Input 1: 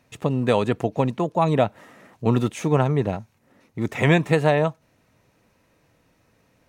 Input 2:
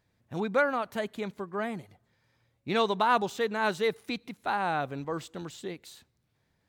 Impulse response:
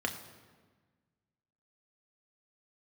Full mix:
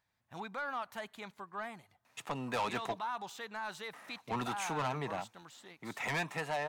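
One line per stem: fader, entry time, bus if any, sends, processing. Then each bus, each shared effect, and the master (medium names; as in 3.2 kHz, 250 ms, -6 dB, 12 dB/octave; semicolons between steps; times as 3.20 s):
-6.0 dB, 2.05 s, muted 2.99–3.93 s, no send, Bessel high-pass 190 Hz, order 8
-9.0 dB, 0.00 s, no send, peak limiter -22.5 dBFS, peak gain reduction 9.5 dB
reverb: none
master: resonant low shelf 620 Hz -9 dB, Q 1.5; gain riding within 4 dB 2 s; saturation -29 dBFS, distortion -8 dB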